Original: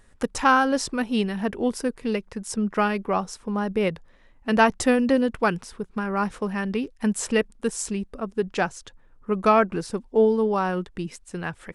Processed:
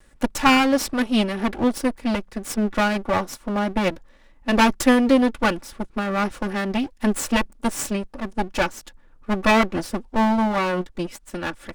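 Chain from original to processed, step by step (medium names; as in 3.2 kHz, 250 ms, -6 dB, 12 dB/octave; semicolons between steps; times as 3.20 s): comb filter that takes the minimum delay 3.5 ms; trim +4 dB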